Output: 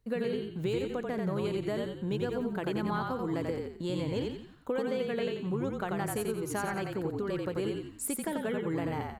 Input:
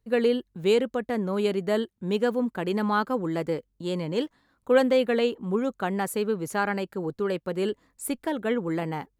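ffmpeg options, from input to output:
-filter_complex "[0:a]acompressor=threshold=0.0224:ratio=6,asplit=6[s0][s1][s2][s3][s4][s5];[s1]adelay=88,afreqshift=-38,volume=0.708[s6];[s2]adelay=176,afreqshift=-76,volume=0.299[s7];[s3]adelay=264,afreqshift=-114,volume=0.124[s8];[s4]adelay=352,afreqshift=-152,volume=0.0525[s9];[s5]adelay=440,afreqshift=-190,volume=0.0221[s10];[s0][s6][s7][s8][s9][s10]amix=inputs=6:normalize=0,volume=1.19"

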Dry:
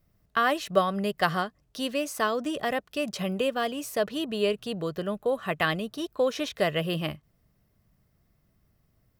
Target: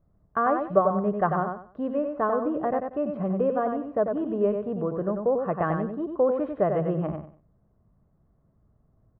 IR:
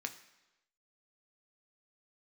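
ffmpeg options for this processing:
-af "lowpass=f=1200:w=0.5412,lowpass=f=1200:w=1.3066,aecho=1:1:94|188|282:0.531|0.133|0.0332,volume=1.33"

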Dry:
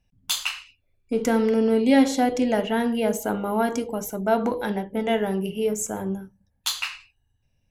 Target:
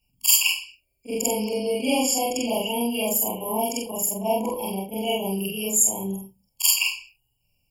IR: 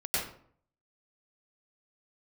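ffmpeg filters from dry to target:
-af "afftfilt=real='re':imag='-im':win_size=4096:overlap=0.75,crystalizer=i=8.5:c=0,afftfilt=real='re*eq(mod(floor(b*sr/1024/1100),2),0)':imag='im*eq(mod(floor(b*sr/1024/1100),2),0)':win_size=1024:overlap=0.75"

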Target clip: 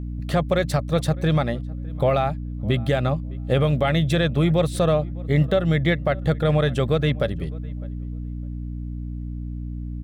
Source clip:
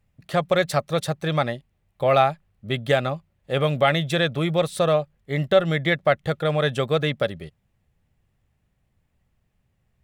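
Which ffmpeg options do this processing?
-filter_complex "[0:a]lowshelf=f=360:g=8.5,alimiter=limit=0.188:level=0:latency=1:release=381,aeval=exprs='val(0)+0.0251*(sin(2*PI*60*n/s)+sin(2*PI*2*60*n/s)/2+sin(2*PI*3*60*n/s)/3+sin(2*PI*4*60*n/s)/4+sin(2*PI*5*60*n/s)/5)':c=same,asplit=2[s0][s1];[s1]adelay=607,lowpass=f=1700:p=1,volume=0.0794,asplit=2[s2][s3];[s3]adelay=607,lowpass=f=1700:p=1,volume=0.17[s4];[s2][s4]amix=inputs=2:normalize=0[s5];[s0][s5]amix=inputs=2:normalize=0,volume=1.5"

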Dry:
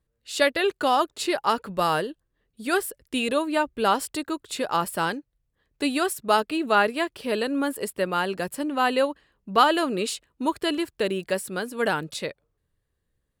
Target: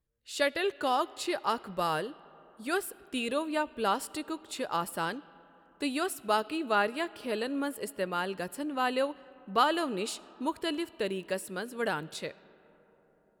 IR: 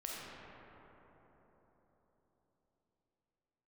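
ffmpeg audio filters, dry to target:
-filter_complex "[0:a]asplit=2[s0][s1];[s1]equalizer=f=3200:w=1.5:g=7.5[s2];[1:a]atrim=start_sample=2205,adelay=20[s3];[s2][s3]afir=irnorm=-1:irlink=0,volume=0.0794[s4];[s0][s4]amix=inputs=2:normalize=0,volume=0.447"

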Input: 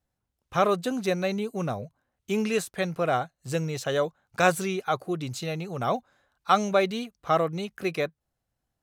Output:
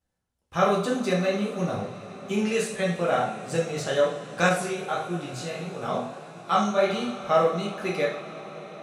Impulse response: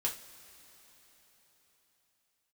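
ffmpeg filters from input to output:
-filter_complex "[1:a]atrim=start_sample=2205,asetrate=22932,aresample=44100[s0];[0:a][s0]afir=irnorm=-1:irlink=0,asettb=1/sr,asplit=3[s1][s2][s3];[s1]atrim=end=4.494[s4];[s2]atrim=start=4.49:end=6.9,asetpts=PTS-STARTPTS,afade=t=in:d=0.004:c=qsin,afade=t=out:st=2.406:d=0.004:c=qsin,flanger=delay=17.5:depth=6.9:speed=1.6[s5];[s3]atrim=start=6.896[s6];[s4][s5]acrossfade=d=0.004:c1=hsin:c2=qsin[s7];[s7][s6]acrossfade=d=0.004:c1=qsin:c2=hsin,volume=0.501"

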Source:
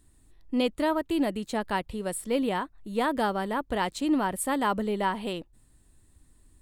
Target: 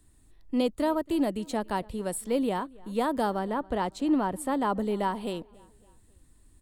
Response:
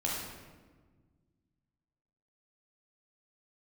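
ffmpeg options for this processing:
-filter_complex "[0:a]asettb=1/sr,asplit=3[s0][s1][s2];[s0]atrim=end=3.394[s3];[s1]atrim=start=3.39:end=4.79,asetpts=PTS-STARTPTS,afade=t=in:d=0.004:c=qsin,afade=t=out:st=1.396:d=0.004:c=qsin,aemphasis=mode=reproduction:type=cd[s4];[s2]atrim=start=4.786[s5];[s3][s4]acrossfade=d=0.004:c1=hsin:c2=qsin[s6];[s6][s5]acrossfade=d=0.004:c1=qsin:c2=hsin,acrossover=split=240|1400|3500[s7][s8][s9][s10];[s9]acompressor=threshold=0.00316:ratio=6[s11];[s7][s8][s11][s10]amix=inputs=4:normalize=0,asplit=2[s12][s13];[s13]adelay=277,lowpass=f=4100:p=1,volume=0.0631,asplit=2[s14][s15];[s15]adelay=277,lowpass=f=4100:p=1,volume=0.46,asplit=2[s16][s17];[s17]adelay=277,lowpass=f=4100:p=1,volume=0.46[s18];[s12][s14][s16][s18]amix=inputs=4:normalize=0"

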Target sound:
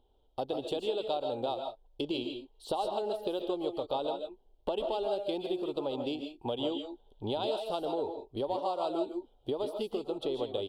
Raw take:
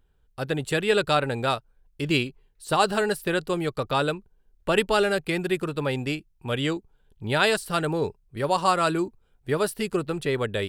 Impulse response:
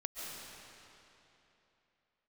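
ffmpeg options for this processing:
-filter_complex "[0:a]firequalizer=gain_entry='entry(110,0);entry(160,-8);entry(250,8);entry(820,15);entry(1200,-2);entry(1800,-21);entry(3200,11);entry(4900,1);entry(7500,-8);entry(11000,-6)':delay=0.05:min_phase=1,acompressor=threshold=0.0501:ratio=6[s0];[1:a]atrim=start_sample=2205,afade=t=out:st=0.22:d=0.01,atrim=end_sample=10143[s1];[s0][s1]afir=irnorm=-1:irlink=0,volume=0.794"

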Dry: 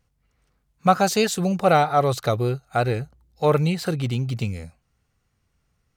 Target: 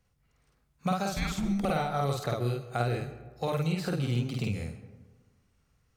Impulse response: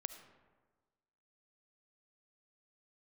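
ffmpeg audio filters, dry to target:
-filter_complex "[0:a]asettb=1/sr,asplit=3[s0][s1][s2];[s0]atrim=end=1.094[s3];[s1]atrim=start=1.09:end=1.65,asetpts=PTS-STARTPTS,afade=t=in:d=0.004:c=qsin,afade=t=out:st=0.556:d=0.004:c=qsin,afreqshift=-390[s4];[s2]atrim=start=1.646[s5];[s3][s4]acrossfade=d=0.004:c1=hsin:c2=qsin[s6];[s6][s5]acrossfade=d=0.004:c1=qsin:c2=hsin,acrossover=split=150|2400[s7][s8][s9];[s7]acompressor=threshold=0.02:ratio=4[s10];[s8]acompressor=threshold=0.0355:ratio=4[s11];[s9]acompressor=threshold=0.00794:ratio=4[s12];[s10][s11][s12]amix=inputs=3:normalize=0,asplit=2[s13][s14];[1:a]atrim=start_sample=2205,adelay=50[s15];[s14][s15]afir=irnorm=-1:irlink=0,volume=1.26[s16];[s13][s16]amix=inputs=2:normalize=0,volume=0.708"

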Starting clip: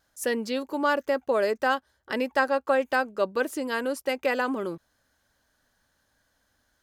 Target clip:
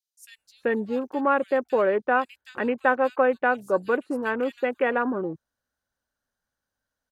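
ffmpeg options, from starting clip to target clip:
-filter_complex "[0:a]afwtdn=0.0141,acrossover=split=3400[s0][s1];[s0]adelay=370[s2];[s2][s1]amix=inputs=2:normalize=0,asetrate=42336,aresample=44100,volume=1.33"

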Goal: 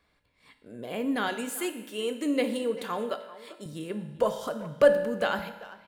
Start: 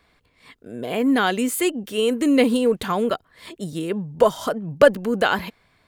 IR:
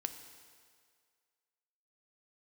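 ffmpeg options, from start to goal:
-filter_complex "[0:a]asettb=1/sr,asplit=3[s0][s1][s2];[s0]atrim=end=1.284[s3];[s1]atrim=start=1.28:end=3.66,asetpts=PTS-STARTPTS,afade=t=in:d=0.004:c=qsin,afade=t=out:st=2.376:d=0.004:c=qsin,highpass=240[s4];[s2]atrim=start=3.656[s5];[s3][s4]acrossfade=d=0.004:c1=hsin:c2=qsin[s6];[s6][s5]acrossfade=d=0.004:c1=qsin:c2=hsin,asplit=2[s7][s8];[s8]adelay=390,highpass=300,lowpass=3400,asoftclip=type=hard:threshold=0.282,volume=0.158[s9];[s7][s9]amix=inputs=2:normalize=0[s10];[1:a]atrim=start_sample=2205,asetrate=83790,aresample=44100[s11];[s10][s11]afir=irnorm=-1:irlink=0,volume=0.75"

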